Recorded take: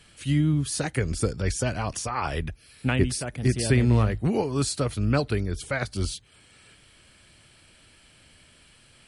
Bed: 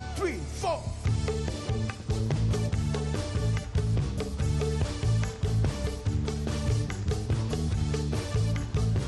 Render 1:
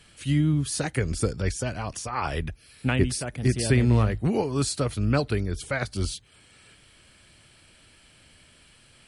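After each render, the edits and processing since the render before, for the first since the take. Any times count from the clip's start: 1.49–2.13 s: gain -3 dB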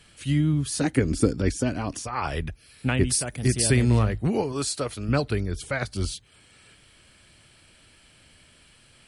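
0.81–2.02 s: peaking EQ 280 Hz +13 dB; 3.07–3.99 s: treble shelf 5.9 kHz +11.5 dB; 4.52–5.09 s: tone controls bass -9 dB, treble +1 dB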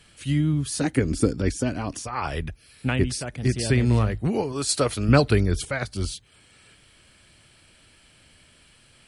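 3.04–3.86 s: distance through air 74 m; 4.69–5.65 s: gain +6.5 dB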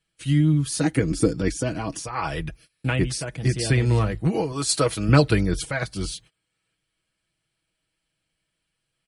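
gate -47 dBFS, range -24 dB; comb 6.2 ms, depth 57%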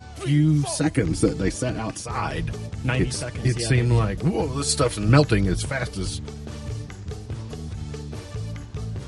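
add bed -4.5 dB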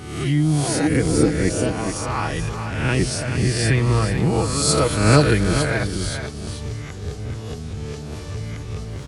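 reverse spectral sustain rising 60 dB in 0.88 s; on a send: delay 432 ms -8 dB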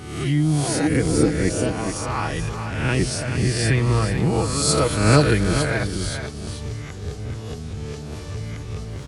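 trim -1 dB

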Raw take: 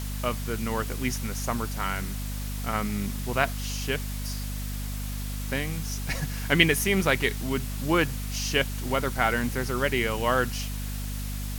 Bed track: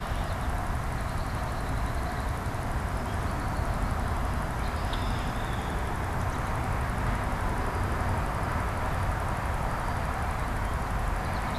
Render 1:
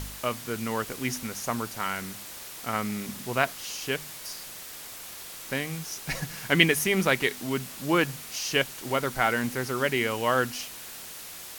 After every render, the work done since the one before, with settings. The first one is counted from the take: de-hum 50 Hz, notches 5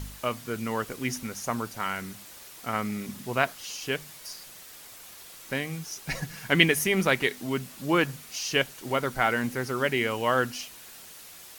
noise reduction 6 dB, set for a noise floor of -42 dBFS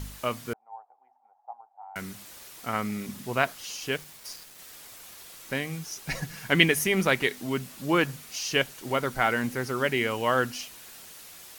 0.53–1.96 s: Butterworth band-pass 800 Hz, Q 6.5; 3.92–4.59 s: small samples zeroed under -43.5 dBFS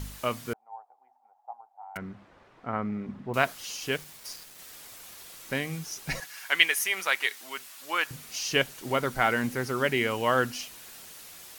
1.97–3.34 s: low-pass 1.3 kHz; 6.20–8.11 s: high-pass 960 Hz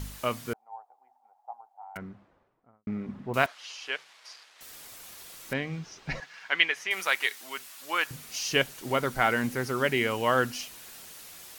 1.67–2.87 s: studio fade out; 3.46–4.61 s: band-pass 770–4000 Hz; 5.53–6.91 s: distance through air 170 m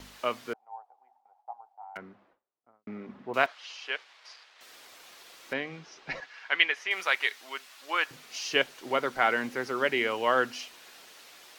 gate with hold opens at -54 dBFS; three-band isolator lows -17 dB, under 260 Hz, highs -13 dB, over 5.6 kHz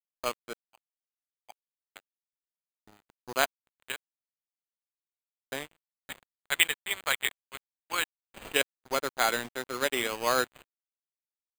sample-rate reducer 5.5 kHz, jitter 0%; crossover distortion -35.5 dBFS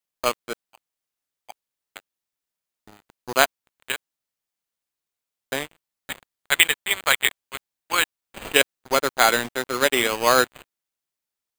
trim +9 dB; peak limiter -1 dBFS, peak gain reduction 3 dB

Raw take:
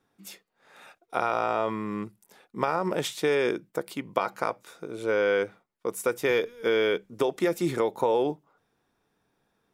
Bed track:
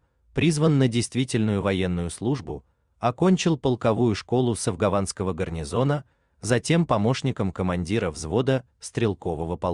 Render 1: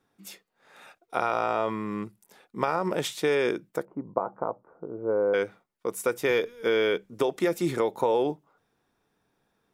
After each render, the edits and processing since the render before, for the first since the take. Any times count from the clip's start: 3.85–5.34 s: inverse Chebyshev low-pass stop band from 3.5 kHz, stop band 60 dB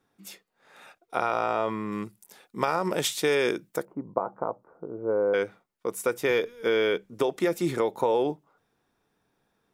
1.92–3.93 s: treble shelf 3.4 kHz +8 dB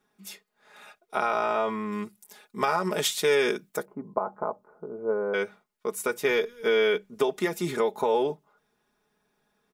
bass shelf 490 Hz -3.5 dB; comb 4.8 ms, depth 68%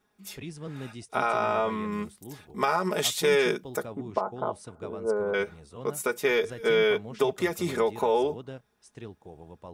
add bed track -19 dB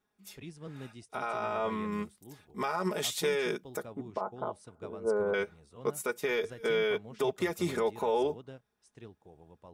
peak limiter -19.5 dBFS, peak gain reduction 8.5 dB; upward expansion 1.5:1, over -43 dBFS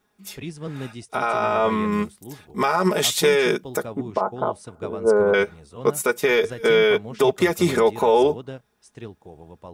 trim +12 dB

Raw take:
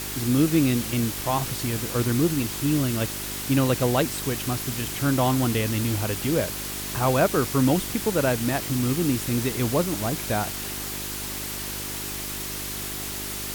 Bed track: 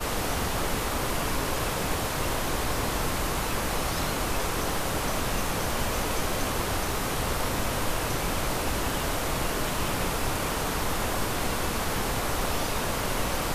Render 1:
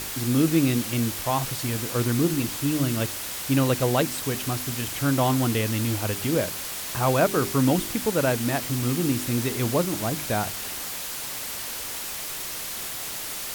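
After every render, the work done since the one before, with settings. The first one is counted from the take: de-hum 50 Hz, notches 8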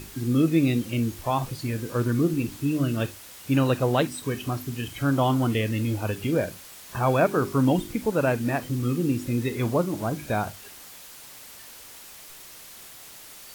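noise print and reduce 12 dB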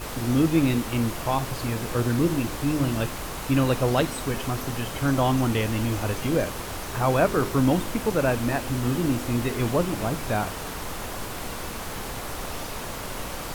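add bed track -5.5 dB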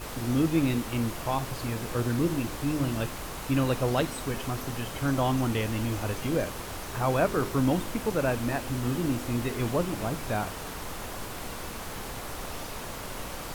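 trim -4 dB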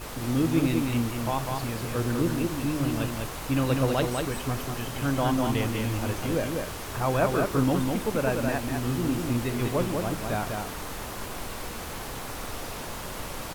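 delay 198 ms -4 dB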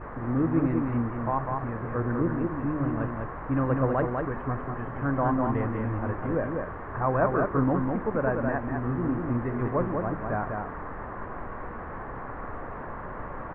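Chebyshev low-pass 1.8 kHz, order 4; peaking EQ 1.1 kHz +5.5 dB 0.27 oct

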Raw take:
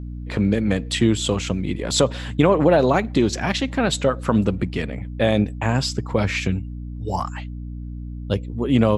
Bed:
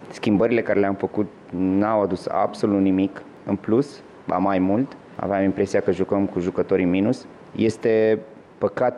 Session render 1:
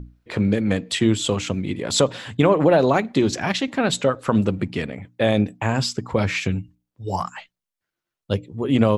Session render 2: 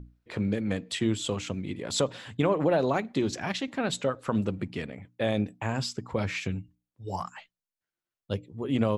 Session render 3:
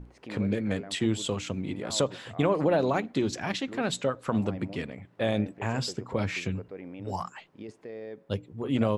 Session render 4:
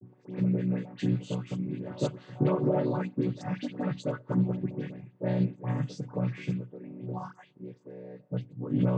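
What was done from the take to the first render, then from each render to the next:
hum notches 60/120/180/240/300 Hz
trim -8.5 dB
add bed -22.5 dB
vocoder on a held chord minor triad, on B2; phase dispersion highs, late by 77 ms, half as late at 1.7 kHz

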